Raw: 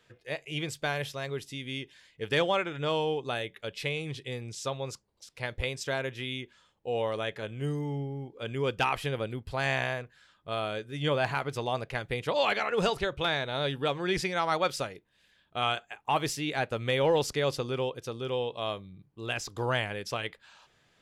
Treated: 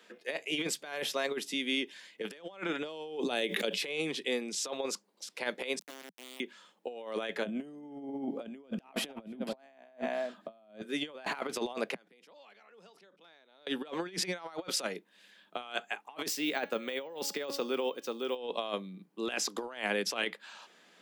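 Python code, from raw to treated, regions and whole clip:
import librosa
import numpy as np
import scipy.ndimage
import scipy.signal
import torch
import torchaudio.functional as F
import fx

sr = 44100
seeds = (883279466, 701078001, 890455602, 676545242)

y = fx.chain(x, sr, fx.peak_eq(hz=1300.0, db=-7.0, octaves=1.4),
    fx.pre_swell(db_per_s=39.0), at=(2.83, 3.82))
y = fx.chain(y, sr, fx.tone_stack(knobs='10-0-1'),
    fx.quant_dither(seeds[0], bits=8, dither='none'), at=(5.79, 6.4))
y = fx.chain(y, sr, fx.small_body(hz=(210.0, 630.0), ring_ms=25, db=15),
    fx.echo_single(ms=281, db=-18.0), at=(7.45, 10.81))
y = fx.chain(y, sr, fx.peak_eq(hz=5300.0, db=7.5, octaves=0.26),
    fx.gate_flip(shuts_db=-30.0, range_db=-37),
    fx.pre_swell(db_per_s=33.0), at=(11.94, 13.67))
y = fx.chain(y, sr, fx.resample_bad(factor=2, down='filtered', up='hold'),
    fx.comb_fb(f0_hz=280.0, decay_s=0.56, harmonics='all', damping=0.0, mix_pct=50), at=(16.28, 18.36))
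y = scipy.signal.sosfilt(scipy.signal.butter(12, 180.0, 'highpass', fs=sr, output='sos'), y)
y = fx.over_compress(y, sr, threshold_db=-36.0, ratio=-0.5)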